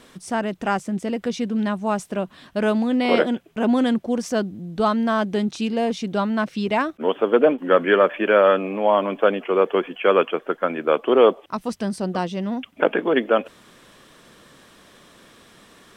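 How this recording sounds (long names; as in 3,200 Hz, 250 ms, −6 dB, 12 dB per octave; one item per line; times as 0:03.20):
background noise floor −51 dBFS
spectral slope −4.0 dB per octave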